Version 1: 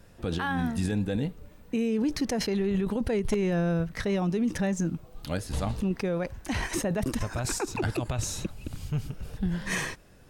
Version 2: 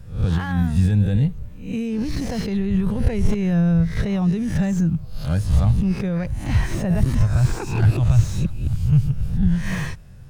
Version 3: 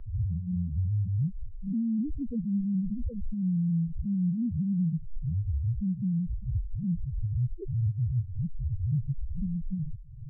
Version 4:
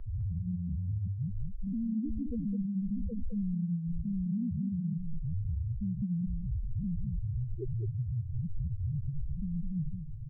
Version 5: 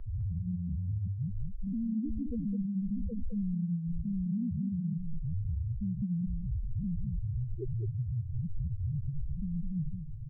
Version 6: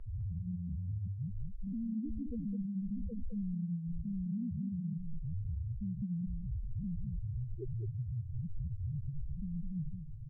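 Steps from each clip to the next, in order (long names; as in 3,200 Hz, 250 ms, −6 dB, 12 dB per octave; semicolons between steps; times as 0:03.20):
peak hold with a rise ahead of every peak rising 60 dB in 0.45 s; low shelf with overshoot 200 Hz +12.5 dB, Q 1.5; slew-rate limiting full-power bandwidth 75 Hz
downward compressor, threshold −24 dBFS, peak gain reduction 14.5 dB; spectral peaks only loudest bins 2; multiband upward and downward compressor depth 40%
brickwall limiter −29.5 dBFS, peak gain reduction 9 dB; single-tap delay 209 ms −7 dB
no processing that can be heard
level −4.5 dB; AAC 96 kbit/s 32,000 Hz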